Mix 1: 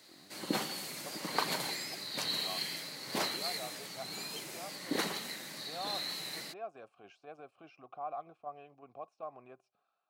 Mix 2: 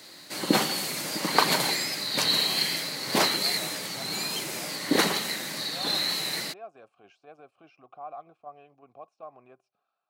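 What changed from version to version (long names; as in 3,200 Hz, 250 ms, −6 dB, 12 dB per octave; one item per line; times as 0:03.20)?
background +11.0 dB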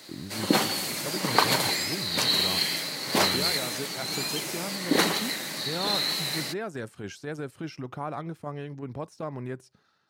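speech: remove formant filter a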